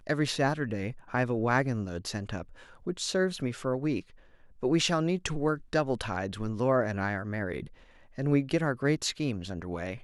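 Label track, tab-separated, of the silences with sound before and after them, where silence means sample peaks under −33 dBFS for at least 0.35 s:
2.420000	2.870000	silence
4.000000	4.630000	silence
7.630000	8.180000	silence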